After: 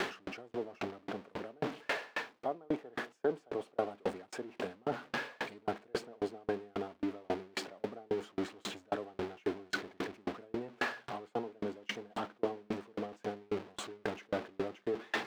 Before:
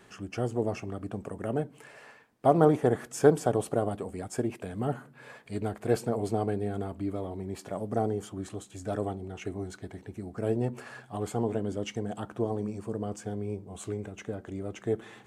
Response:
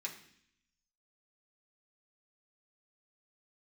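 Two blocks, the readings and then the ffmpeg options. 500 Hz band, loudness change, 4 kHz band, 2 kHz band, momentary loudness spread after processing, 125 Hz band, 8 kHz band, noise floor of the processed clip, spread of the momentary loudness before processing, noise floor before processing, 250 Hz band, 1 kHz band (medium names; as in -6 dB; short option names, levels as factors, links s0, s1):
-8.0 dB, -8.0 dB, +3.5 dB, +4.0 dB, 6 LU, -18.0 dB, -9.5 dB, -67 dBFS, 15 LU, -56 dBFS, -9.0 dB, -6.5 dB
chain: -filter_complex "[0:a]aeval=exprs='val(0)+0.5*0.0188*sgn(val(0))':c=same,areverse,acompressor=threshold=0.0158:ratio=6,areverse,acrossover=split=230 4800:gain=0.112 1 0.0891[s0][s1][s2];[s0][s1][s2]amix=inputs=3:normalize=0,aeval=exprs='val(0)*pow(10,-37*if(lt(mod(3.7*n/s,1),2*abs(3.7)/1000),1-mod(3.7*n/s,1)/(2*abs(3.7)/1000),(mod(3.7*n/s,1)-2*abs(3.7)/1000)/(1-2*abs(3.7)/1000))/20)':c=same,volume=3.76"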